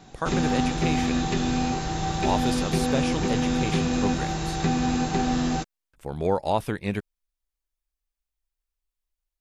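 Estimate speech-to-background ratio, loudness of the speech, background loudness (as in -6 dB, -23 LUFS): -5.0 dB, -30.5 LUFS, -25.5 LUFS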